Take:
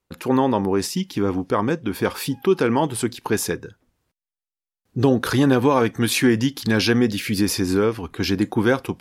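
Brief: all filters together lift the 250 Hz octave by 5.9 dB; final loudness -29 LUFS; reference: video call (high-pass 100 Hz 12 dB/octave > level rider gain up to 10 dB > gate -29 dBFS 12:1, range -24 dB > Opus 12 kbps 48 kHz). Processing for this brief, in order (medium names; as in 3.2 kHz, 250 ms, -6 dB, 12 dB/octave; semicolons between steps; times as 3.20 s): high-pass 100 Hz 12 dB/octave; peaking EQ 250 Hz +7 dB; level rider gain up to 10 dB; gate -29 dBFS 12:1, range -24 dB; trim -11.5 dB; Opus 12 kbps 48 kHz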